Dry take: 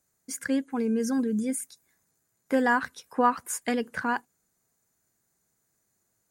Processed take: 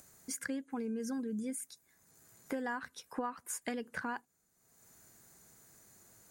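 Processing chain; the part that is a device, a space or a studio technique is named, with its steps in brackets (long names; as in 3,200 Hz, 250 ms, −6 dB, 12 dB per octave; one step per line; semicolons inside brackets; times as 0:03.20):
upward and downward compression (upward compression, threshold −45 dBFS; downward compressor 5 to 1, threshold −34 dBFS, peak gain reduction 15.5 dB)
level −2 dB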